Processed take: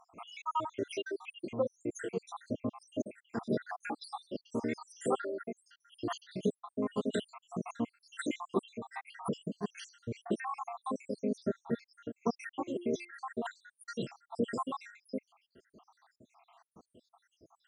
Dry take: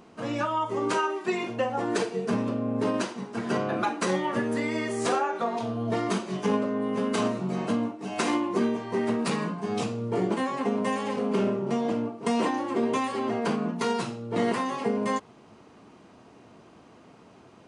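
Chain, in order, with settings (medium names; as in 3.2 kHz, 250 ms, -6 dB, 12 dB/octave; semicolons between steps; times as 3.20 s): random holes in the spectrogram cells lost 83%; 12.61–13.11 s: de-hum 349.9 Hz, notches 7; trim -3 dB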